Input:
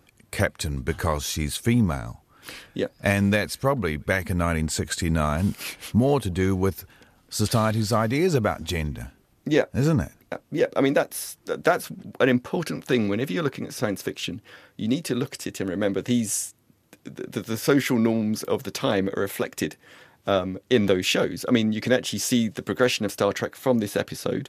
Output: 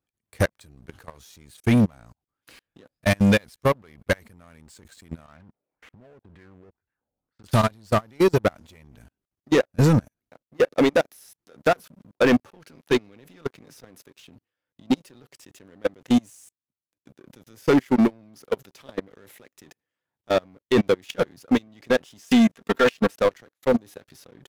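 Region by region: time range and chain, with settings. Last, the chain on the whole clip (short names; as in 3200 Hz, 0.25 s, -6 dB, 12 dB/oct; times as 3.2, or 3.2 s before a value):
5.26–7.44 compressor 12:1, threshold -34 dBFS + LFO low-pass sine 2 Hz 540–2000 Hz
22.18–23.16 bell 1300 Hz +7 dB 1.7 oct + notch 1500 Hz, Q 24 + comb 4.4 ms, depth 72%
whole clip: level quantiser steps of 21 dB; sample leveller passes 3; upward expander 2.5:1, over -25 dBFS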